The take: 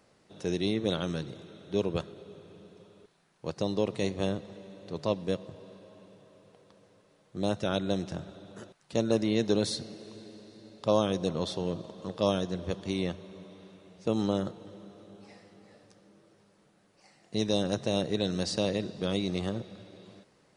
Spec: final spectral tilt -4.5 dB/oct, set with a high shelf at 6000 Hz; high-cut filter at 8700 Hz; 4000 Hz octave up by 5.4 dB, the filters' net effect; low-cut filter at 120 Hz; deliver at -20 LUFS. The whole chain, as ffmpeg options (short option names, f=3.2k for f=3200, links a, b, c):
-af "highpass=120,lowpass=8.7k,equalizer=f=4k:t=o:g=3.5,highshelf=f=6k:g=8.5,volume=10.5dB"